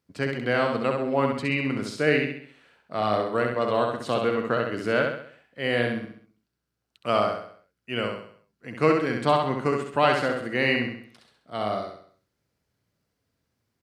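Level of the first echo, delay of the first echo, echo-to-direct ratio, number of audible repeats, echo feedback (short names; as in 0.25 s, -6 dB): -4.0 dB, 66 ms, -3.0 dB, 5, 45%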